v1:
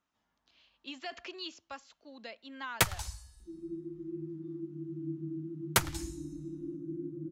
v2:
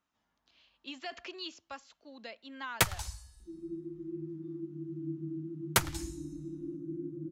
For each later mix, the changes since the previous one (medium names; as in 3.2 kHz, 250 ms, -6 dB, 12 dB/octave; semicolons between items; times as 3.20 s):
no change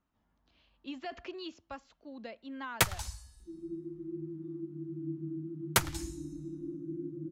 speech: add tilt EQ -3 dB/octave